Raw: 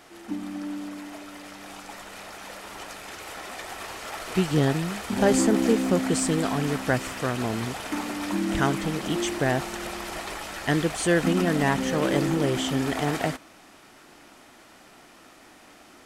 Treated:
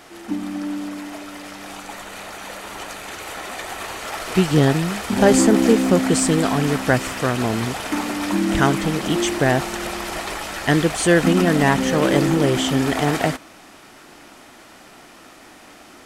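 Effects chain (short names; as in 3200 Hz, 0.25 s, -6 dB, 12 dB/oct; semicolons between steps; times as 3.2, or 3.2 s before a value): 1.76–4.08 notch 5200 Hz, Q 11; gain +6.5 dB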